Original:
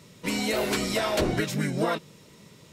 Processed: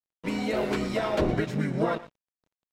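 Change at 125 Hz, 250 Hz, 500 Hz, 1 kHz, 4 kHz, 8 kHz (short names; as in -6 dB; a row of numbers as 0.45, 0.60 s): 0.0, 0.0, 0.0, -1.0, -8.5, -13.5 dB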